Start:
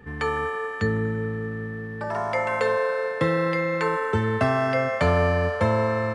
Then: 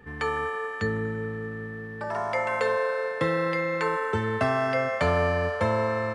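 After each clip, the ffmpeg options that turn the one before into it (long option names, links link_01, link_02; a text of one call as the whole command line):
ffmpeg -i in.wav -af "equalizer=frequency=120:width=0.43:gain=-4,volume=-1.5dB" out.wav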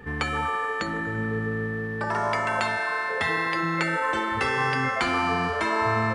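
ffmpeg -i in.wav -af "afftfilt=real='re*lt(hypot(re,im),0.178)':imag='im*lt(hypot(re,im),0.178)':win_size=1024:overlap=0.75,volume=7dB" out.wav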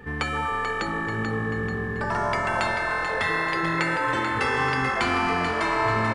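ffmpeg -i in.wav -filter_complex "[0:a]asplit=8[link_01][link_02][link_03][link_04][link_05][link_06][link_07][link_08];[link_02]adelay=437,afreqshift=-43,volume=-7.5dB[link_09];[link_03]adelay=874,afreqshift=-86,volume=-12.7dB[link_10];[link_04]adelay=1311,afreqshift=-129,volume=-17.9dB[link_11];[link_05]adelay=1748,afreqshift=-172,volume=-23.1dB[link_12];[link_06]adelay=2185,afreqshift=-215,volume=-28.3dB[link_13];[link_07]adelay=2622,afreqshift=-258,volume=-33.5dB[link_14];[link_08]adelay=3059,afreqshift=-301,volume=-38.7dB[link_15];[link_01][link_09][link_10][link_11][link_12][link_13][link_14][link_15]amix=inputs=8:normalize=0" out.wav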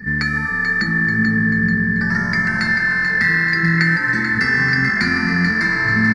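ffmpeg -i in.wav -af "firequalizer=gain_entry='entry(100,0);entry(190,15);entry(280,1);entry(550,-16);entry(1100,-11);entry(1800,12);entry(3100,-25);entry(4500,10);entry(7600,-7);entry(13000,-1)':delay=0.05:min_phase=1,volume=3.5dB" out.wav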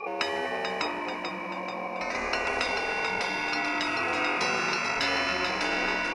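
ffmpeg -i in.wav -af "aeval=exprs='val(0)*sin(2*PI*630*n/s)':channel_layout=same,afftfilt=real='re*lt(hypot(re,im),0.224)':imag='im*lt(hypot(re,im),0.224)':win_size=1024:overlap=0.75" out.wav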